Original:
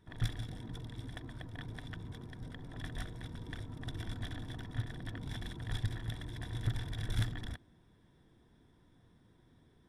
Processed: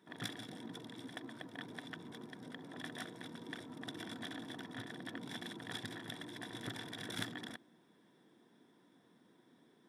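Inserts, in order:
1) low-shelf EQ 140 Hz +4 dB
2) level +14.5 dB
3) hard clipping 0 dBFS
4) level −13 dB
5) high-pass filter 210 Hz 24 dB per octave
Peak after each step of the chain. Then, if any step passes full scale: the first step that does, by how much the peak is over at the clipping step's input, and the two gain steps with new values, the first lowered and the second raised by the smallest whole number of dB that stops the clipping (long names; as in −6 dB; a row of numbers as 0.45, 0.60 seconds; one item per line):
−20.0, −5.5, −5.5, −18.5, −22.0 dBFS
no step passes full scale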